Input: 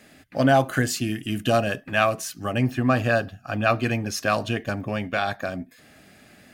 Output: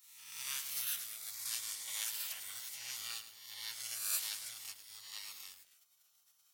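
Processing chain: reverse spectral sustain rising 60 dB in 0.90 s; differentiator; 0.62–2.97 s: repeats whose band climbs or falls 172 ms, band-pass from 940 Hz, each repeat 0.7 oct, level -3 dB; spectral gate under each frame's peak -15 dB weak; amplifier tone stack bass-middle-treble 10-0-10; bit-crushed delay 107 ms, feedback 55%, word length 9-bit, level -9.5 dB; trim +2 dB

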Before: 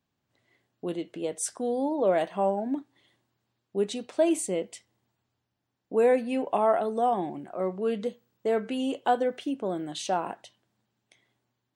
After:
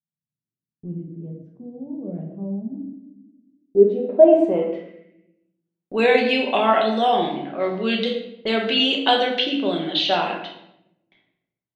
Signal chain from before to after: level-controlled noise filter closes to 970 Hz, open at -23 dBFS; frequency weighting D; gate with hold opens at -48 dBFS; simulated room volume 240 m³, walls mixed, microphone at 1.1 m; low-pass sweep 150 Hz -> 4 kHz, 2.98–5.85 s; trim +3.5 dB

